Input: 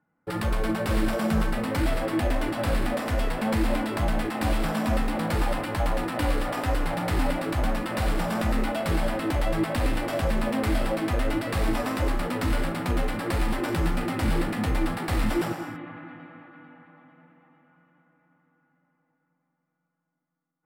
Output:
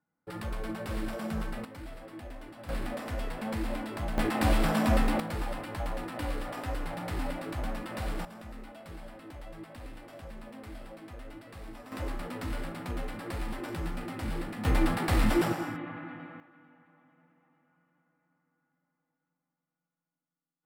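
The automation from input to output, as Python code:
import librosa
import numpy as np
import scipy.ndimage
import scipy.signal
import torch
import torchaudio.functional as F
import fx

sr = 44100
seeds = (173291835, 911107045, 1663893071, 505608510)

y = fx.gain(x, sr, db=fx.steps((0.0, -10.0), (1.65, -19.0), (2.69, -9.0), (4.18, 0.0), (5.2, -9.0), (8.25, -20.0), (11.92, -10.0), (14.65, 0.0), (16.4, -10.0)))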